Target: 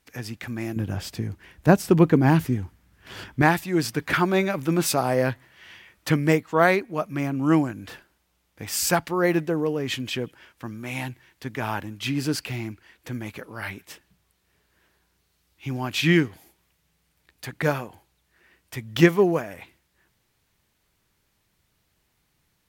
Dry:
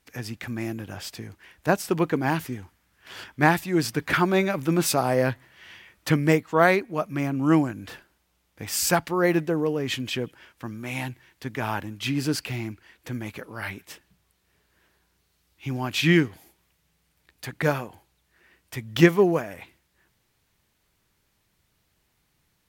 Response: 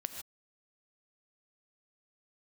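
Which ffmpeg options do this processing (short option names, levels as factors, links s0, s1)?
-filter_complex "[0:a]asettb=1/sr,asplit=3[s0][s1][s2];[s0]atrim=end=0.764[s3];[s1]atrim=start=0.76:end=3.42,asetpts=PTS-STARTPTS,afade=t=in:d=0.004:c=qsin,afade=t=out:st=2.656:d=0.004:c=qsin,lowshelf=f=360:g=12[s4];[s2]atrim=start=3.416[s5];[s3][s4]acrossfade=d=0.004:c1=hsin:c2=qsin[s6];[s6][s5]acrossfade=d=0.004:c1=qsin:c2=hsin"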